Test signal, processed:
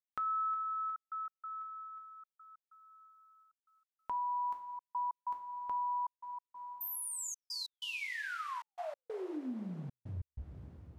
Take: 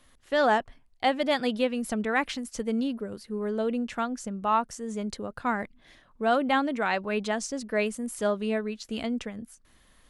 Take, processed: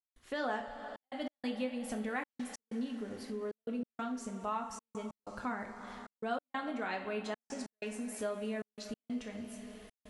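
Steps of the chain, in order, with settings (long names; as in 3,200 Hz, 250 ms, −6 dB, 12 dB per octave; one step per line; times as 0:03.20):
coupled-rooms reverb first 0.36 s, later 4.2 s, from −18 dB, DRR 1.5 dB
downward compressor 2 to 1, threshold −40 dBFS
gate pattern ".xxxxx.x" 94 BPM −60 dB
level −2.5 dB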